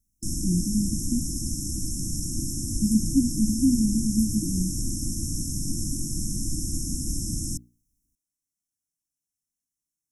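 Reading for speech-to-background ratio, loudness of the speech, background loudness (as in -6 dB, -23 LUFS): 4.0 dB, -26.0 LUFS, -30.0 LUFS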